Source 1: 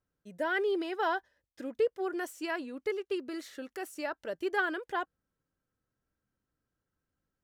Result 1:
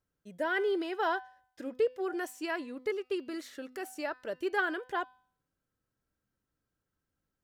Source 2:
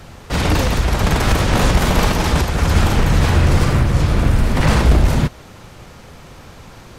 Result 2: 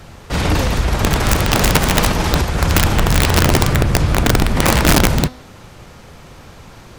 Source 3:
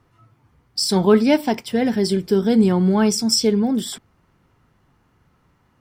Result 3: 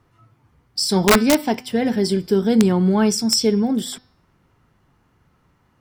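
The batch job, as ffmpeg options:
-af "aeval=exprs='(mod(2*val(0)+1,2)-1)/2':c=same,bandreject=f=252.9:t=h:w=4,bandreject=f=505.8:t=h:w=4,bandreject=f=758.7:t=h:w=4,bandreject=f=1.0116k:t=h:w=4,bandreject=f=1.2645k:t=h:w=4,bandreject=f=1.5174k:t=h:w=4,bandreject=f=1.7703k:t=h:w=4,bandreject=f=2.0232k:t=h:w=4,bandreject=f=2.2761k:t=h:w=4,bandreject=f=2.529k:t=h:w=4,bandreject=f=2.7819k:t=h:w=4,bandreject=f=3.0348k:t=h:w=4,bandreject=f=3.2877k:t=h:w=4,bandreject=f=3.5406k:t=h:w=4,bandreject=f=3.7935k:t=h:w=4,bandreject=f=4.0464k:t=h:w=4,bandreject=f=4.2993k:t=h:w=4,bandreject=f=4.5522k:t=h:w=4,bandreject=f=4.8051k:t=h:w=4,bandreject=f=5.058k:t=h:w=4,bandreject=f=5.3109k:t=h:w=4,bandreject=f=5.5638k:t=h:w=4"

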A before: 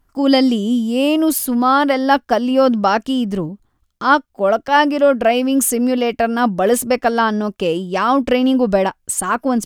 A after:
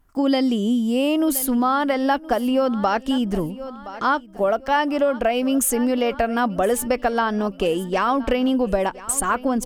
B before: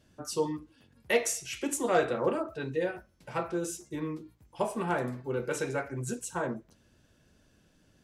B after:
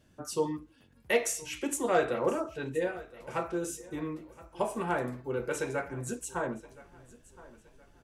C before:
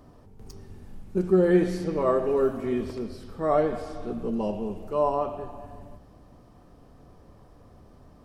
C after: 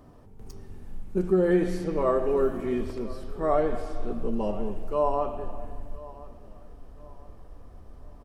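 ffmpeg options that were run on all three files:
-filter_complex "[0:a]equalizer=f=4.8k:t=o:w=0.83:g=-3.5,asplit=2[a][b];[b]aecho=0:1:1020|2040|3060:0.1|0.037|0.0137[c];[a][c]amix=inputs=2:normalize=0,asubboost=boost=5:cutoff=55,acompressor=threshold=-17dB:ratio=4"

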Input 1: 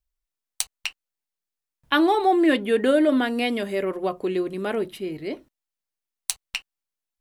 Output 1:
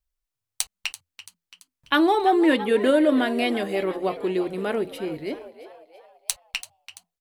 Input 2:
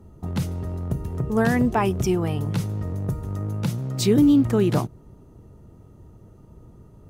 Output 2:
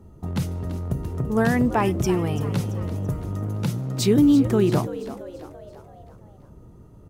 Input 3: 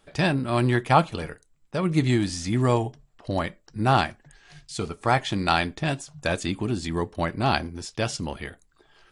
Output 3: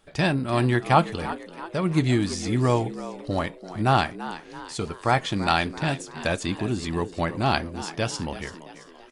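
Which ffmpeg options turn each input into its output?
-filter_complex "[0:a]asplit=6[a][b][c][d][e][f];[b]adelay=336,afreqshift=84,volume=-14dB[g];[c]adelay=672,afreqshift=168,volume=-20.2dB[h];[d]adelay=1008,afreqshift=252,volume=-26.4dB[i];[e]adelay=1344,afreqshift=336,volume=-32.6dB[j];[f]adelay=1680,afreqshift=420,volume=-38.8dB[k];[a][g][h][i][j][k]amix=inputs=6:normalize=0"

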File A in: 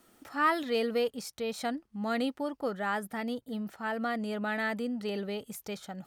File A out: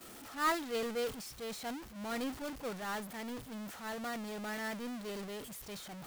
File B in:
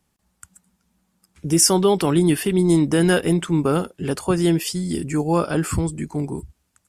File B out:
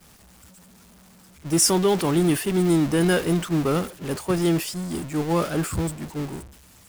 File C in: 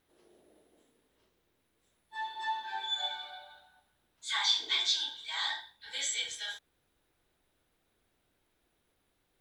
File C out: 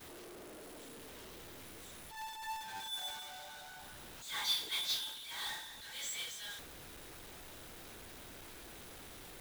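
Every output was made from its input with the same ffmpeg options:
-af "aeval=exprs='val(0)+0.5*0.106*sgn(val(0))':c=same,agate=range=-33dB:threshold=-15dB:ratio=3:detection=peak,volume=-5dB"

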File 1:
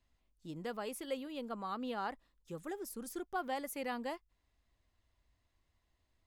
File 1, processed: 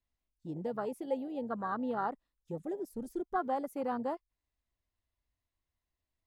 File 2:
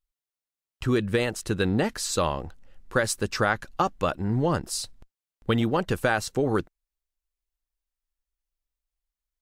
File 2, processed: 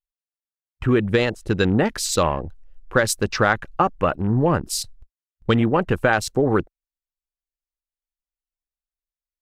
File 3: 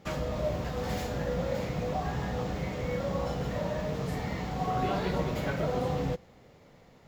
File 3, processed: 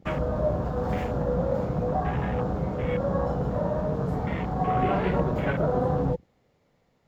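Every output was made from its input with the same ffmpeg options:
-af "afwtdn=0.01,volume=5.5dB"

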